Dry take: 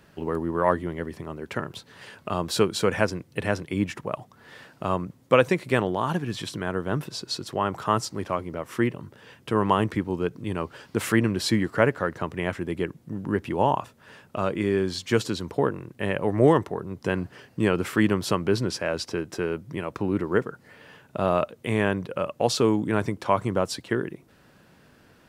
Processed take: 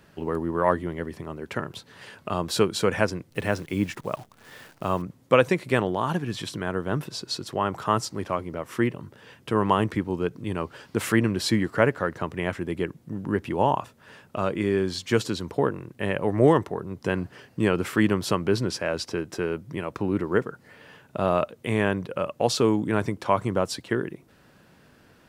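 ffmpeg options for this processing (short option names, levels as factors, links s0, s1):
-filter_complex "[0:a]asettb=1/sr,asplit=3[s0][s1][s2];[s0]atrim=end=3.304[s3];[s1]atrim=start=3.3:end=5.02,asetpts=PTS-STARTPTS,afade=t=in:d=0.004:c=qsin,afade=t=out:st=1.716:d=0.004:c=qsin,acrusher=bits=9:dc=4:mix=0:aa=0.000001[s4];[s2]atrim=start=5.016[s5];[s3][s4]acrossfade=d=0.004:c1=hsin:c2=qsin[s6];[s6][s5]acrossfade=d=0.004:c1=qsin:c2=hsin"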